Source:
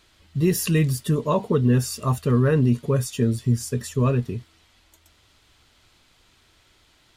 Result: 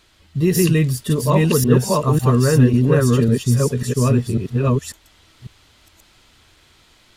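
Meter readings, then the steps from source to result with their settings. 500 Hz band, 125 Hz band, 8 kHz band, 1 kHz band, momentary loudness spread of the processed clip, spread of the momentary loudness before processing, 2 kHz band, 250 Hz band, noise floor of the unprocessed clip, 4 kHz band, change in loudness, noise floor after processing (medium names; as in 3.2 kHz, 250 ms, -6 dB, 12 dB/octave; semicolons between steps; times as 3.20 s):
+6.0 dB, +5.5 dB, +6.0 dB, +6.0 dB, 6 LU, 7 LU, +6.0 dB, +6.0 dB, -60 dBFS, +6.0 dB, +5.5 dB, -54 dBFS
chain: chunks repeated in reverse 547 ms, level 0 dB; trim +3 dB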